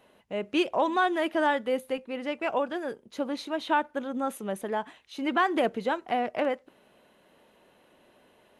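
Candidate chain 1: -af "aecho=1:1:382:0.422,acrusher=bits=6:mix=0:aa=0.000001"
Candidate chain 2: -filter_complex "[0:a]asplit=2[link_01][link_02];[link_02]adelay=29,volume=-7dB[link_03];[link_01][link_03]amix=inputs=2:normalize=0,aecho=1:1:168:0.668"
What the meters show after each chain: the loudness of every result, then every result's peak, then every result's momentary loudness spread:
−28.5, −26.5 LKFS; −13.0, −9.5 dBFS; 9, 10 LU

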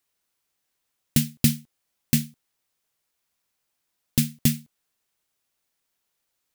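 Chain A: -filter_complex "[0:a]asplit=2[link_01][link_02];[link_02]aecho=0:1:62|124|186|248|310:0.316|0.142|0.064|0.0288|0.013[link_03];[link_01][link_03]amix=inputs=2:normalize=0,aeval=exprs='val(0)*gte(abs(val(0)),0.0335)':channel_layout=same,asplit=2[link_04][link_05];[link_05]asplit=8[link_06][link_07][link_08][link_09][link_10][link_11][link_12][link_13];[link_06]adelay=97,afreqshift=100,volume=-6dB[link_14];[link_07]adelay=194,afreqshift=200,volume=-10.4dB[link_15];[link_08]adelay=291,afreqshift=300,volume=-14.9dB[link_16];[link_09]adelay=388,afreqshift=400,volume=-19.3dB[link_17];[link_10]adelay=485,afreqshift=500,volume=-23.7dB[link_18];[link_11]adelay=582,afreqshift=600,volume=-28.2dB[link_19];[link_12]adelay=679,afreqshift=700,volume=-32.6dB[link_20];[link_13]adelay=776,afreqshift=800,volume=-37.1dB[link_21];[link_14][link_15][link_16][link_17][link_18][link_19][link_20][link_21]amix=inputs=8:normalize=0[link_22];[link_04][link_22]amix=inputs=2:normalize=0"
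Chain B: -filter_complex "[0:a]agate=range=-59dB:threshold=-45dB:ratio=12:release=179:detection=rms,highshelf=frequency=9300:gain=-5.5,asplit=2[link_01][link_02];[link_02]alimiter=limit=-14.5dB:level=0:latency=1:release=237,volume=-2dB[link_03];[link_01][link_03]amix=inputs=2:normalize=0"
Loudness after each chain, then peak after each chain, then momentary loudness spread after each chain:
−24.5, −24.0 LKFS; −4.0, −3.0 dBFS; 15, 12 LU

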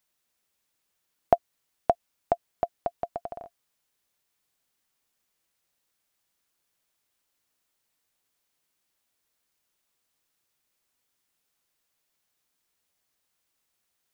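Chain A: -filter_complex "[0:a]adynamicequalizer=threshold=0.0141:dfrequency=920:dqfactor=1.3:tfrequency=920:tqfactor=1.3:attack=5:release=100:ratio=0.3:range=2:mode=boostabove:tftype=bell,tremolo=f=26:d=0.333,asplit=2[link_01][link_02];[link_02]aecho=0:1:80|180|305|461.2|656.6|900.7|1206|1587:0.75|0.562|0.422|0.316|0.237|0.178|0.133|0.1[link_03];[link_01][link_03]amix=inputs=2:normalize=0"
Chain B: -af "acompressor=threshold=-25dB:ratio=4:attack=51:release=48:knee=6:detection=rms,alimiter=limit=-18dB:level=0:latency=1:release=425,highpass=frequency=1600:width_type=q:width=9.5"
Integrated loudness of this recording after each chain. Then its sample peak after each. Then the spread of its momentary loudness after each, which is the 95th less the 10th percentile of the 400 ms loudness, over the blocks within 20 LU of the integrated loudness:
−30.0, −48.0 LKFS; −7.5, −20.0 dBFS; 18, 6 LU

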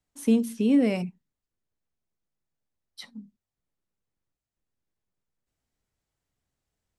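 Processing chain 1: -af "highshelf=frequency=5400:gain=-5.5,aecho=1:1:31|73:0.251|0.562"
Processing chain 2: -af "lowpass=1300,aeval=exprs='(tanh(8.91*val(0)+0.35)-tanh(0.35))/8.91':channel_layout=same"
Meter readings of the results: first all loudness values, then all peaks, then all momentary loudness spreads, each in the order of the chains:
−22.5, −28.5 LKFS; −9.5, −17.0 dBFS; 9, 9 LU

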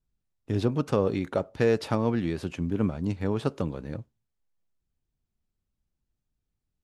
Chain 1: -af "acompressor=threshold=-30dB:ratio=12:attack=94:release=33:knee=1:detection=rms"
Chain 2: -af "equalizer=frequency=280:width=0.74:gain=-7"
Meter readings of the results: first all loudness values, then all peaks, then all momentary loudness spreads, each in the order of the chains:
−31.0, −32.5 LKFS; −12.0, −13.0 dBFS; 5, 8 LU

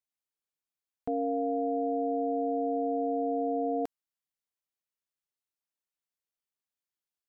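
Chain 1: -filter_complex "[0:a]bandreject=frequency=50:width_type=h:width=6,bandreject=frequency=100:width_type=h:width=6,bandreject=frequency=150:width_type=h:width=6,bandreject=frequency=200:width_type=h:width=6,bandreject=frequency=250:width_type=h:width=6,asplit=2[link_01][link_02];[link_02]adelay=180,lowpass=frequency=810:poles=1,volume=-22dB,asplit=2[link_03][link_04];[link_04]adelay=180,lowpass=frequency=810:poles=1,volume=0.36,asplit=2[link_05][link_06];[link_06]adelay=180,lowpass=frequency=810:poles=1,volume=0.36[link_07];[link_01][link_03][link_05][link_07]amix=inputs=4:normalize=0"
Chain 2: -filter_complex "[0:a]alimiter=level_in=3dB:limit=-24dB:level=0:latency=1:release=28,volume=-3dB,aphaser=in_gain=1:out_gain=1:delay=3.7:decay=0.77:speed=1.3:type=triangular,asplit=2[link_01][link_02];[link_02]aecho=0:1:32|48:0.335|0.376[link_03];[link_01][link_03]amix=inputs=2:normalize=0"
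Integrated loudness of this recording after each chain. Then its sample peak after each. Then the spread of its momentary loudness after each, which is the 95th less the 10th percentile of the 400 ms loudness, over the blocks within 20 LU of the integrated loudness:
−30.5, −30.5 LKFS; −21.5, −14.5 dBFS; 4, 4 LU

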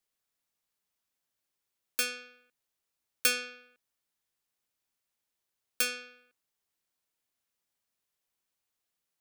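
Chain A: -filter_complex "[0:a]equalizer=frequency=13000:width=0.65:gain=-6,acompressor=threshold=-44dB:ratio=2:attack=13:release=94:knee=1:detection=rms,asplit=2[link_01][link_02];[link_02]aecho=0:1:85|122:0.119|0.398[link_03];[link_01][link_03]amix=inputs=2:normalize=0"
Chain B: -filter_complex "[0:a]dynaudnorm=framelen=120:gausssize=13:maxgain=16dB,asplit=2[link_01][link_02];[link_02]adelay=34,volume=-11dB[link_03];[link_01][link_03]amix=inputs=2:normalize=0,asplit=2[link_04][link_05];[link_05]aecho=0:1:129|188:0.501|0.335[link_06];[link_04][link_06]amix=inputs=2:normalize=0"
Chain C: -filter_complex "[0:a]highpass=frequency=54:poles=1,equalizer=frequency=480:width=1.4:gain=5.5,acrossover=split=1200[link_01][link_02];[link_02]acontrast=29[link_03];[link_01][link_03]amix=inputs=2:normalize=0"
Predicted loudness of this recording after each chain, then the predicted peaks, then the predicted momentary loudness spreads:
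−42.0, −19.0, −26.5 LKFS; −21.0, −1.0, −6.0 dBFS; 18, 12, 16 LU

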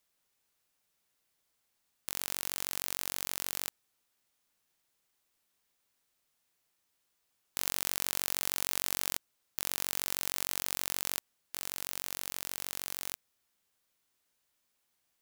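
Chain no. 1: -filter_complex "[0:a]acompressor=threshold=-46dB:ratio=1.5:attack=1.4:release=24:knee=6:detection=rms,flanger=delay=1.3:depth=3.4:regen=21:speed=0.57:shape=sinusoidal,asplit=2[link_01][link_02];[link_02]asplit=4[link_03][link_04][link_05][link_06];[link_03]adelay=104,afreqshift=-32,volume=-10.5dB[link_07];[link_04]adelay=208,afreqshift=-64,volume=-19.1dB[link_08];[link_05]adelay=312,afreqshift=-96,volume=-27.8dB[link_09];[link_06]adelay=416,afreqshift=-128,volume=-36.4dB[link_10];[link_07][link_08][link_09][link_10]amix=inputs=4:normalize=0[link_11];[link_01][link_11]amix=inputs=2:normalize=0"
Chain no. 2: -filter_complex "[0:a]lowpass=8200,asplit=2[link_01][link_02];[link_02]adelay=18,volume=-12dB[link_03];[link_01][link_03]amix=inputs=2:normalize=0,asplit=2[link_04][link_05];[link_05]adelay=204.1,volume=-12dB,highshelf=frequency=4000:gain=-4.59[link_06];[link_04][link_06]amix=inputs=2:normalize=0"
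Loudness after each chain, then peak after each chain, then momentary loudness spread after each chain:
−47.0, −38.5 LKFS; −19.0, −11.5 dBFS; 8, 9 LU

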